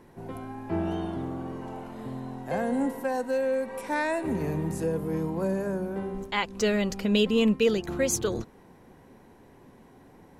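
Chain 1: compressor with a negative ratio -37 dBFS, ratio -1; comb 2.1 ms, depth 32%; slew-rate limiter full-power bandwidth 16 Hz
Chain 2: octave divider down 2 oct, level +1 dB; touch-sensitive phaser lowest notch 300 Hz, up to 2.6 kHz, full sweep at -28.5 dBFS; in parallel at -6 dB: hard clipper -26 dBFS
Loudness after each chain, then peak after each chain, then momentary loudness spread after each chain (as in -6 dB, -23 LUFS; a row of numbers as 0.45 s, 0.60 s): -37.5 LUFS, -26.0 LUFS; -20.0 dBFS, -10.5 dBFS; 14 LU, 12 LU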